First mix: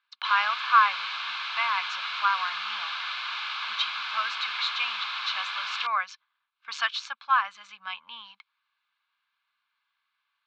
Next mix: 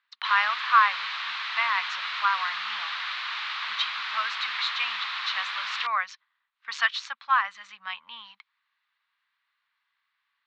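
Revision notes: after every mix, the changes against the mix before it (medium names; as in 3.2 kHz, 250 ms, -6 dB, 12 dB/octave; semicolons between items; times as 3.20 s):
master: remove Butterworth band-stop 1.9 kHz, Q 6.1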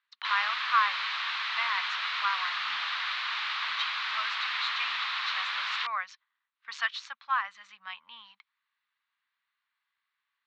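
speech -6.0 dB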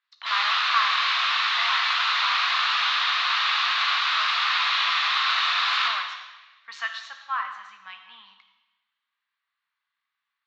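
reverb: on, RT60 1.1 s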